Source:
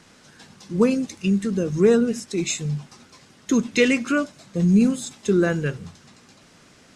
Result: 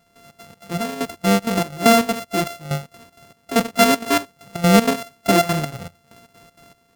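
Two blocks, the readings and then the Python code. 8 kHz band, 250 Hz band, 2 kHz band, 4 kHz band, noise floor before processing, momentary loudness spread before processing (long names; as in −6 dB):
+4.5 dB, −0.5 dB, +4.0 dB, +8.5 dB, −53 dBFS, 12 LU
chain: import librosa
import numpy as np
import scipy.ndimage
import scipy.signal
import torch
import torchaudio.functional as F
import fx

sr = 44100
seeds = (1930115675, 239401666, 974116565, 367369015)

y = np.r_[np.sort(x[:len(x) // 64 * 64].reshape(-1, 64), axis=1).ravel(), x[len(x) // 64 * 64:]]
y = fx.step_gate(y, sr, bpm=194, pattern='..xx.xx.xx.', floor_db=-12.0, edge_ms=4.5)
y = F.gain(torch.from_numpy(y), 3.5).numpy()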